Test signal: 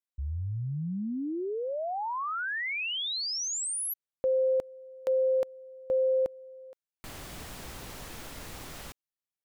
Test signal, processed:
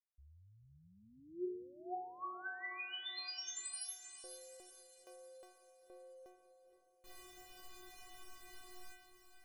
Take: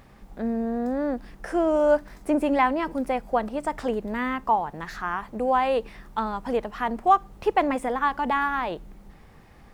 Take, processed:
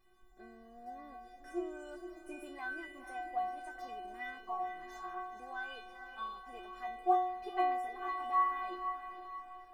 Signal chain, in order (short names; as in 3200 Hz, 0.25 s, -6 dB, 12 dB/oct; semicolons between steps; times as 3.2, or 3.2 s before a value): metallic resonator 360 Hz, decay 0.8 s, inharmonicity 0.008; diffused feedback echo 0.496 s, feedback 45%, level -9 dB; gain +5.5 dB